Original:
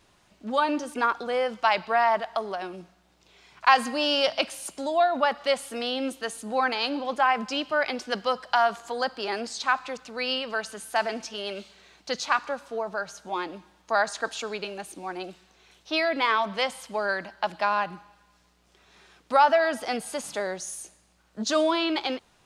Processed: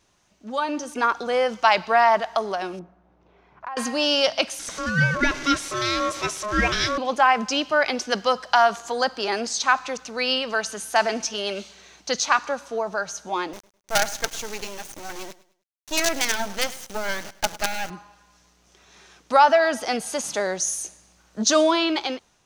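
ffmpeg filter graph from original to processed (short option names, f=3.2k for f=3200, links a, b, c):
-filter_complex "[0:a]asettb=1/sr,asplit=3[a][b][c];[a]atrim=end=2.794[d];[b]atrim=start=2.79:end=3.77,asetpts=PTS-STARTPTS,afade=t=in:d=0.004:c=qsin,afade=t=out:st=0.976:d=0.004:c=qsin,lowpass=1.1k,acompressor=threshold=-34dB:ratio=10:attack=3.2:release=140:knee=1:detection=peak[e];[c]atrim=start=3.766[f];[d][e]acrossfade=d=0.004:c1=hsin:c2=qsin[g];[g][f]acrossfade=d=0.004:c1=qsin:c2=hsin,asettb=1/sr,asplit=3[h][i][j];[h]atrim=end=4.594[k];[i]atrim=start=4.59:end=6.98,asetpts=PTS-STARTPTS,afade=t=in:d=0.004:c=qsin,afade=t=out:st=2.386:d=0.004:c=qsin,aeval=exprs='val(0)+0.5*0.0266*sgn(val(0))':c=same,lowpass=6.7k,aeval=exprs='val(0)*sin(2*PI*840*n/s)':c=same[l];[j]atrim=start=6.976[m];[k][l]acrossfade=d=0.004:c1=hsin:c2=qsin[n];[n][m]acrossfade=d=0.004:c1=qsin:c2=hsin,asettb=1/sr,asplit=3[o][p][q];[o]atrim=end=13.534[r];[p]atrim=start=13.53:end=17.9,asetpts=PTS-STARTPTS,afade=t=in:d=0.004:c=qsin,afade=t=out:st=4.366:d=0.004:c=qsin,asuperstop=centerf=1100:order=20:qfactor=2.6,acrusher=bits=4:dc=4:mix=0:aa=0.000001,aecho=1:1:103|206|309:0.119|0.0392|0.0129,atrim=end_sample=192717[s];[q]atrim=start=17.896[t];[r][s]acrossfade=d=0.004:c1=hsin:c2=qsin[u];[u][t]acrossfade=d=0.004:c1=qsin:c2=hsin,equalizer=f=6.1k:t=o:w=0.34:g=9.5,dynaudnorm=f=370:g=5:m=11.5dB,volume=-4dB"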